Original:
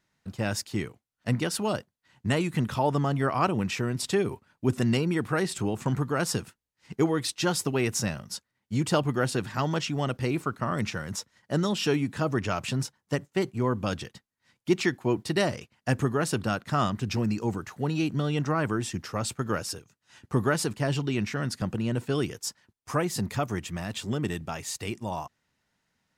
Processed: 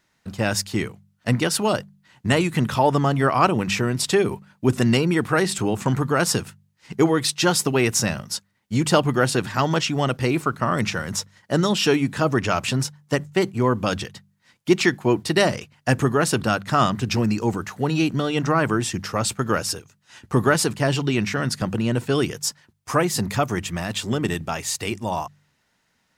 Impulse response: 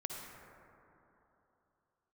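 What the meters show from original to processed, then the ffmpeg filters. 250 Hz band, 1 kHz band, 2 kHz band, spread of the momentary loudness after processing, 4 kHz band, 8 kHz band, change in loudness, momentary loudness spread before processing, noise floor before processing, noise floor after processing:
+6.0 dB, +8.0 dB, +8.0 dB, 8 LU, +8.5 dB, +8.5 dB, +6.5 dB, 8 LU, -82 dBFS, -68 dBFS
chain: -af "lowshelf=f=400:g=-3,acontrast=35,bandreject=f=49.28:t=h:w=4,bandreject=f=98.56:t=h:w=4,bandreject=f=147.84:t=h:w=4,bandreject=f=197.12:t=h:w=4,volume=1.41"

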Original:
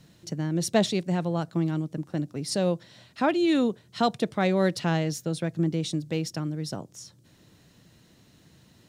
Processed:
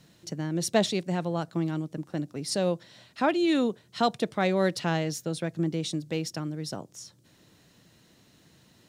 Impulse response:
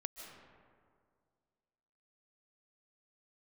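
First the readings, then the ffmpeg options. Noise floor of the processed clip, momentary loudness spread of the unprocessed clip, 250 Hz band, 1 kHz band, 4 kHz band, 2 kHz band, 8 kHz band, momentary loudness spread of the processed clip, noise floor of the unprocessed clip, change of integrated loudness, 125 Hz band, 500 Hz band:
-61 dBFS, 9 LU, -2.5 dB, -0.5 dB, 0.0 dB, 0.0 dB, 0.0 dB, 11 LU, -59 dBFS, -1.5 dB, -3.5 dB, -1.0 dB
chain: -af "lowshelf=f=180:g=-6.5"

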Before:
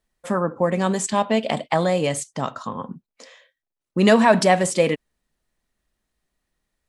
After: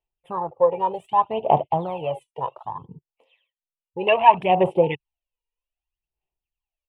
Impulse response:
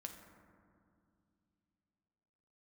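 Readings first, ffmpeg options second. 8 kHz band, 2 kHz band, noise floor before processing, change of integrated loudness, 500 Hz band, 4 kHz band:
under -35 dB, -6.0 dB, under -85 dBFS, -1.0 dB, -1.5 dB, -5.5 dB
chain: -filter_complex "[0:a]aphaser=in_gain=1:out_gain=1:delay=2.1:decay=0.73:speed=0.64:type=sinusoidal,afwtdn=0.0708,firequalizer=gain_entry='entry(140,0);entry(220,-16);entry(370,2);entry(570,-1);entry(860,10);entry(1500,-17);entry(2700,15);entry(4500,-17);entry(6600,-23);entry(10000,-4)':delay=0.05:min_phase=1,acrossover=split=3700[s0][s1];[s1]acompressor=threshold=0.00282:ratio=4:attack=1:release=60[s2];[s0][s2]amix=inputs=2:normalize=0,volume=0.531"

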